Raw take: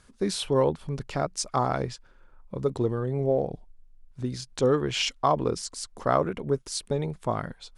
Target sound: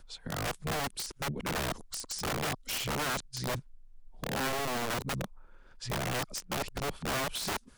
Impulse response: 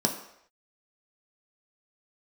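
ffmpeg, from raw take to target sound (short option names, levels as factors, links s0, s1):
-filter_complex "[0:a]areverse,acrossover=split=280|3900[s0][s1][s2];[s1]acompressor=threshold=0.02:ratio=8[s3];[s2]alimiter=level_in=1.78:limit=0.0631:level=0:latency=1:release=139,volume=0.562[s4];[s0][s3][s4]amix=inputs=3:normalize=0,aeval=exprs='(mod(23.7*val(0)+1,2)-1)/23.7':c=same"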